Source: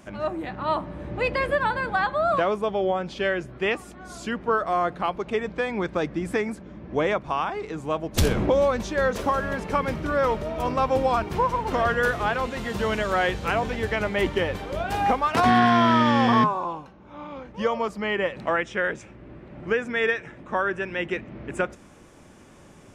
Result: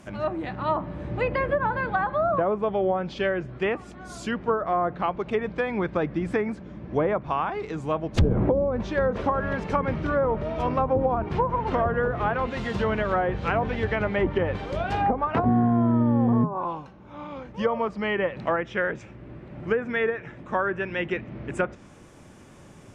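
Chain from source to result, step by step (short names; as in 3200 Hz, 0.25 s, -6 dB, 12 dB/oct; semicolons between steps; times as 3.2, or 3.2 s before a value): treble ducked by the level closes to 480 Hz, closed at -16 dBFS; bell 120 Hz +4.5 dB 1 oct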